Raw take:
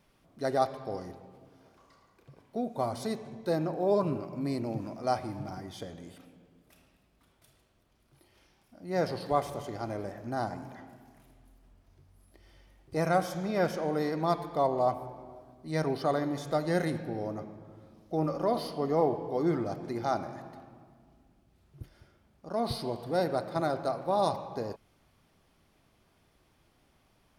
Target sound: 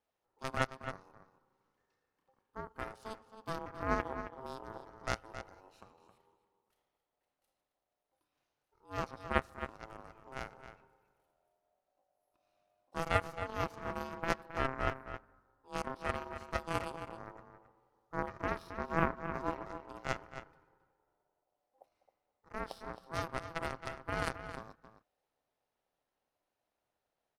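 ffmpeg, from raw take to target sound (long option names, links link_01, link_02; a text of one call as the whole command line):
ffmpeg -i in.wav -filter_complex "[0:a]aeval=exprs='0.237*(cos(1*acos(clip(val(0)/0.237,-1,1)))-cos(1*PI/2))+0.0335*(cos(2*acos(clip(val(0)/0.237,-1,1)))-cos(2*PI/2))+0.075*(cos(3*acos(clip(val(0)/0.237,-1,1)))-cos(3*PI/2))+0.0237*(cos(4*acos(clip(val(0)/0.237,-1,1)))-cos(4*PI/2))+0.00168*(cos(5*acos(clip(val(0)/0.237,-1,1)))-cos(5*PI/2))':channel_layout=same,asplit=2[link_01][link_02];[link_02]adelay=268.2,volume=-10dB,highshelf=frequency=4000:gain=-6.04[link_03];[link_01][link_03]amix=inputs=2:normalize=0,aeval=exprs='val(0)*sin(2*PI*660*n/s)':channel_layout=same,volume=4dB" out.wav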